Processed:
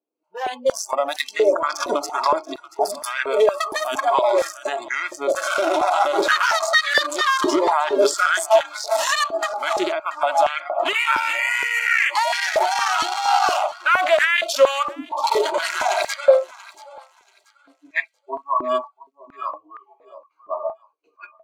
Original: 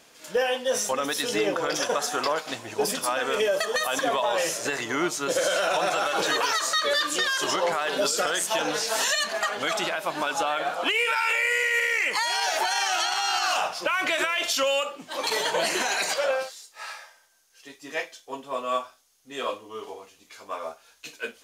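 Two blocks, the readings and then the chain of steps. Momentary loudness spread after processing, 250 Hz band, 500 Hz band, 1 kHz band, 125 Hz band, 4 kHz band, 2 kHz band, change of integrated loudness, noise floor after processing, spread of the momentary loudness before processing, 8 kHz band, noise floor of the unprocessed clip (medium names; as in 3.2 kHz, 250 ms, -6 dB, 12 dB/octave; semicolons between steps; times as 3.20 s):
9 LU, +3.5 dB, +7.0 dB, +7.5 dB, no reading, 0.0 dB, +4.5 dB, +5.0 dB, -64 dBFS, 14 LU, -1.5 dB, -58 dBFS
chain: local Wiener filter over 25 samples; spectral noise reduction 28 dB; in parallel at +2 dB: peak limiter -25 dBFS, peak gain reduction 9 dB; on the sum: level rider gain up to 14.5 dB; thinning echo 683 ms, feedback 29%, high-pass 1 kHz, level -18 dB; step-sequenced high-pass 4.3 Hz 320–1800 Hz; trim -10.5 dB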